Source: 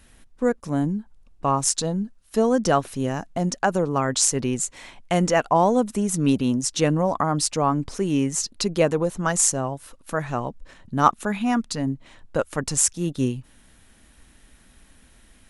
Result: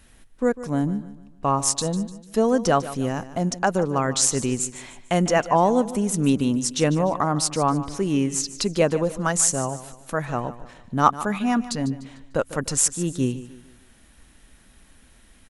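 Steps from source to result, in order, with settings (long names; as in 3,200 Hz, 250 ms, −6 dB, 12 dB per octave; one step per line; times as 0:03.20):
repeating echo 149 ms, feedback 40%, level −15 dB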